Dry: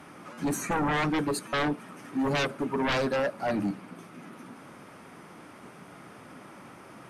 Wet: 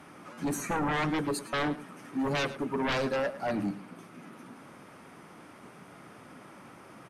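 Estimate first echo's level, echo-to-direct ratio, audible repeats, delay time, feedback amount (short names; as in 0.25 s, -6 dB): -16.0 dB, -16.0 dB, 1, 0.107 s, no steady repeat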